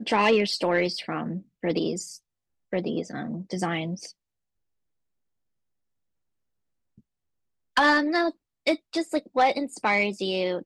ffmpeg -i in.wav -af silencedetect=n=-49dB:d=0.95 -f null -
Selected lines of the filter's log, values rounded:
silence_start: 4.11
silence_end: 6.98 | silence_duration: 2.86